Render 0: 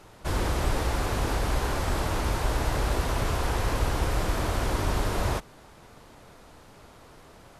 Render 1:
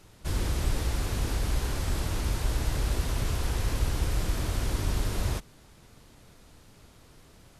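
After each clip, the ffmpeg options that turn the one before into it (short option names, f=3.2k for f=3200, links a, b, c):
-af "equalizer=f=840:t=o:w=2.7:g=-10"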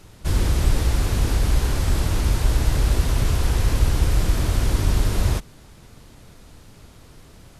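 -af "lowshelf=f=220:g=3.5,volume=6dB"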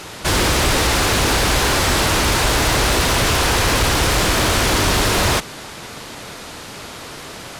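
-filter_complex "[0:a]asplit=2[a][b];[b]highpass=f=720:p=1,volume=29dB,asoftclip=type=tanh:threshold=-5.5dB[c];[a][c]amix=inputs=2:normalize=0,lowpass=f=5.8k:p=1,volume=-6dB,volume=-1.5dB"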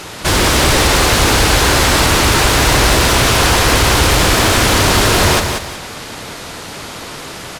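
-af "aecho=1:1:185|370|555|740:0.501|0.145|0.0421|0.0122,volume=4dB"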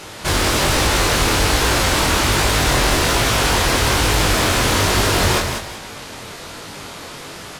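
-af "flanger=delay=19:depth=5.1:speed=1.2,volume=-2dB"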